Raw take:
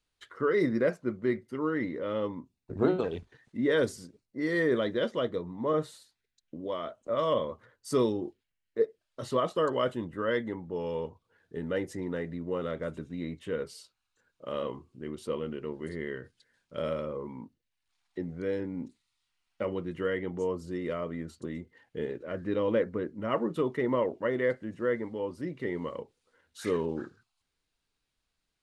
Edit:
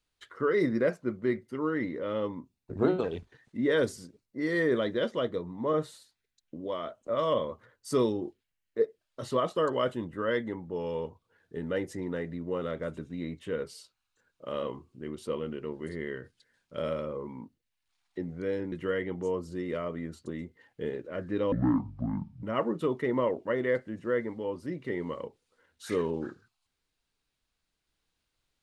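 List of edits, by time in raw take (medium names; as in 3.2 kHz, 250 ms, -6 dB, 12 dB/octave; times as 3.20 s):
18.72–19.88 s: delete
22.68–23.18 s: speed 55%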